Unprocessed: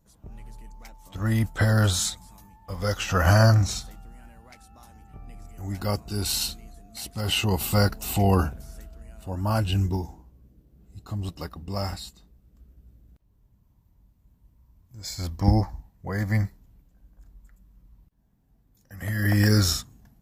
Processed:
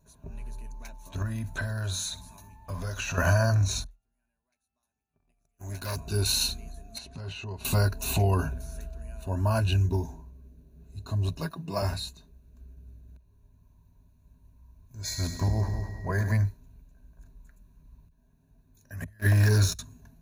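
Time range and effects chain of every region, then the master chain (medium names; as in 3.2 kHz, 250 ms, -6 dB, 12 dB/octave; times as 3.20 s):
1.22–3.18 s: compression 8:1, threshold -31 dBFS + peaking EQ 430 Hz -5.5 dB 0.22 oct + flutter echo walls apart 10.8 m, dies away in 0.23 s
3.84–5.97 s: gate -38 dBFS, range -29 dB + tilt EQ +1.5 dB/octave + valve stage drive 30 dB, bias 0.65
6.98–7.65 s: compression 4:1, threshold -39 dBFS + distance through air 89 m
11.41–11.82 s: high-pass 120 Hz 24 dB/octave + comb 6.1 ms, depth 63%
15.04–16.31 s: compression 3:1, threshold -24 dBFS + whistle 1.9 kHz -44 dBFS + multi-head delay 103 ms, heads first and second, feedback 47%, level -11.5 dB
19.04–19.79 s: gate -23 dBFS, range -28 dB + waveshaping leveller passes 2
whole clip: rippled EQ curve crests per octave 1.5, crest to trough 12 dB; compression 3:1, threshold -22 dBFS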